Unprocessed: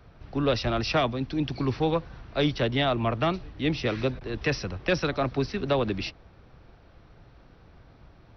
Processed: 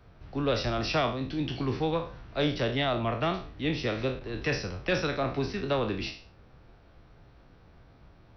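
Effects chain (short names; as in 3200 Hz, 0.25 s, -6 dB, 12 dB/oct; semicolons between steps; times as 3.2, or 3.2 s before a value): spectral trails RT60 0.42 s; gain -4 dB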